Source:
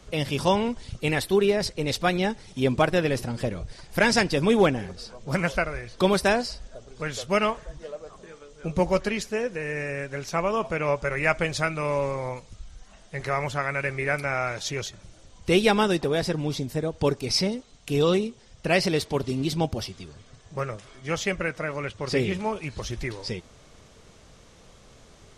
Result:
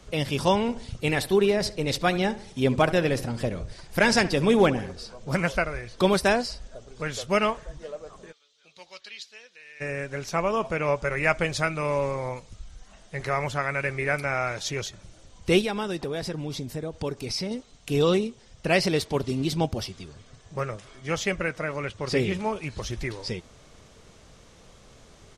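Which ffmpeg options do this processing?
-filter_complex "[0:a]asplit=3[a][b][c];[a]afade=t=out:st=0.67:d=0.02[d];[b]asplit=2[e][f];[f]adelay=69,lowpass=f=2k:p=1,volume=-15dB,asplit=2[g][h];[h]adelay=69,lowpass=f=2k:p=1,volume=0.46,asplit=2[i][j];[j]adelay=69,lowpass=f=2k:p=1,volume=0.46,asplit=2[k][l];[l]adelay=69,lowpass=f=2k:p=1,volume=0.46[m];[e][g][i][k][m]amix=inputs=5:normalize=0,afade=t=in:st=0.67:d=0.02,afade=t=out:st=5.3:d=0.02[n];[c]afade=t=in:st=5.3:d=0.02[o];[d][n][o]amix=inputs=3:normalize=0,asplit=3[p][q][r];[p]afade=t=out:st=8.31:d=0.02[s];[q]bandpass=f=3.9k:t=q:w=3,afade=t=in:st=8.31:d=0.02,afade=t=out:st=9.8:d=0.02[t];[r]afade=t=in:st=9.8:d=0.02[u];[s][t][u]amix=inputs=3:normalize=0,asettb=1/sr,asplit=3[v][w][x];[v]atrim=end=15.614[y];[w]atrim=start=15.61:end=17.51,asetpts=PTS-STARTPTS,afade=t=in:d=0.004:c=qsin,afade=t=out:st=1.896:d=0.004:c=qsin,acompressor=threshold=-31dB:ratio=2:attack=3.2:release=140:knee=1:detection=peak[z];[x]atrim=start=17.506[aa];[y][z]acrossfade=d=0.004:c1=hsin:c2=qsin[ab];[ab][aa]acrossfade=d=0.004:c1=qsin:c2=hsin"

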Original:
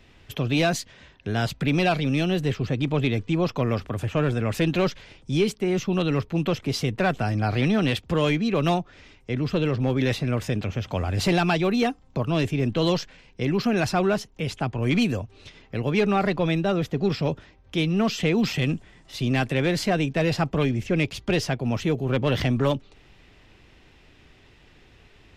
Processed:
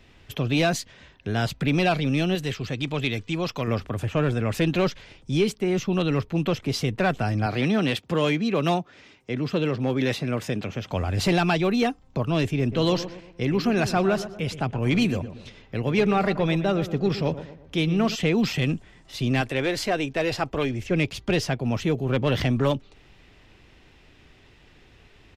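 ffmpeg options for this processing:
-filter_complex "[0:a]asettb=1/sr,asplit=3[a][b][c];[a]atrim=end=2.354[d];[b]atrim=start=2.35:end=3.68,asetpts=PTS-STARTPTS,afade=t=in:d=0.004:c=qsin,afade=t=out:st=1.326:d=0.004:c=qsin,tiltshelf=f=1.5k:g=-5[e];[c]atrim=start=3.676[f];[d][e]acrossfade=d=0.004:c1=hsin:c2=qsin[g];[g][f]acrossfade=d=0.004:c1=qsin:c2=hsin,asettb=1/sr,asplit=3[h][i][j];[h]atrim=end=7.464[k];[i]atrim=start=7.46:end=10.91,asetpts=PTS-STARTPTS,afade=t=in:d=0.004:c=qsin,afade=t=out:st=3.446:d=0.004:c=qsin,highpass=140[l];[j]atrim=start=10.906[m];[k][l]acrossfade=d=0.004:c1=hsin:c2=qsin[n];[n][m]acrossfade=d=0.004:c1=qsin:c2=hsin,asplit=3[o][p][q];[o]afade=t=out:st=12.71:d=0.02[r];[p]asplit=2[s][t];[t]adelay=118,lowpass=f=1.8k:p=1,volume=-12dB,asplit=2[u][v];[v]adelay=118,lowpass=f=1.8k:p=1,volume=0.44,asplit=2[w][x];[x]adelay=118,lowpass=f=1.8k:p=1,volume=0.44,asplit=2[y][z];[z]adelay=118,lowpass=f=1.8k:p=1,volume=0.44[aa];[s][u][w][y][aa]amix=inputs=5:normalize=0,afade=t=in:st=12.71:d=0.02,afade=t=out:st=18.14:d=0.02[ab];[q]afade=t=in:st=18.14:d=0.02[ac];[r][ab][ac]amix=inputs=3:normalize=0,asettb=1/sr,asplit=3[ad][ae][af];[ad]atrim=end=19.414[ag];[ae]atrim=start=19.41:end=20.91,asetpts=PTS-STARTPTS,afade=t=in:d=0.004:c=qsin,afade=t=out:st=1.496:d=0.004:c=qsin,equalizer=f=170:t=o:w=0.74:g=-11.5[ah];[af]atrim=start=20.906[ai];[ag][ah]acrossfade=d=0.004:c1=hsin:c2=qsin[aj];[aj][ai]acrossfade=d=0.004:c1=qsin:c2=hsin"

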